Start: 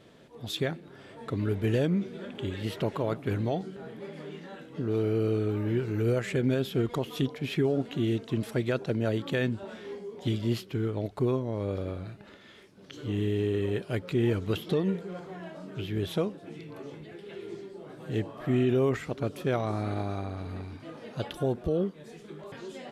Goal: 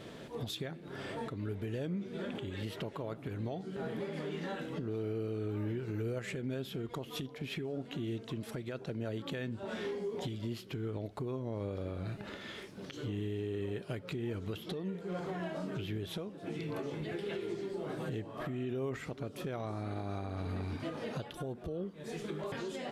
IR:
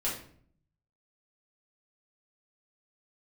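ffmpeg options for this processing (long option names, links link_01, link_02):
-filter_complex "[0:a]acompressor=threshold=-41dB:ratio=6,alimiter=level_in=12.5dB:limit=-24dB:level=0:latency=1:release=242,volume=-12.5dB,asplit=2[link_01][link_02];[1:a]atrim=start_sample=2205[link_03];[link_02][link_03]afir=irnorm=-1:irlink=0,volume=-25dB[link_04];[link_01][link_04]amix=inputs=2:normalize=0,volume=7dB"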